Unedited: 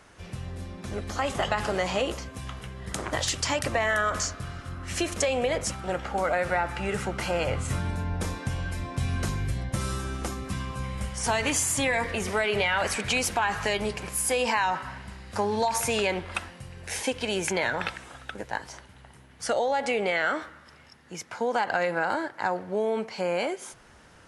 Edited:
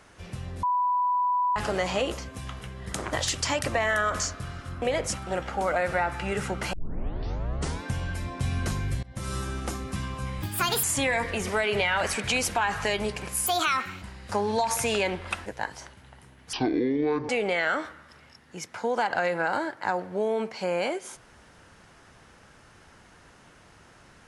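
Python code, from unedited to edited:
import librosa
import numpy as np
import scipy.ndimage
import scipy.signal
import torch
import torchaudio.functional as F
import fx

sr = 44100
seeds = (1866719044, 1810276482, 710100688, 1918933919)

y = fx.edit(x, sr, fx.bleep(start_s=0.63, length_s=0.93, hz=989.0, db=-21.5),
    fx.cut(start_s=4.82, length_s=0.57),
    fx.tape_start(start_s=7.3, length_s=1.09),
    fx.fade_in_from(start_s=9.6, length_s=0.35, floor_db=-23.5),
    fx.speed_span(start_s=10.99, length_s=0.65, speed=1.57),
    fx.speed_span(start_s=14.27, length_s=0.79, speed=1.42),
    fx.cut(start_s=16.5, length_s=1.88),
    fx.speed_span(start_s=19.45, length_s=0.41, speed=0.54), tone=tone)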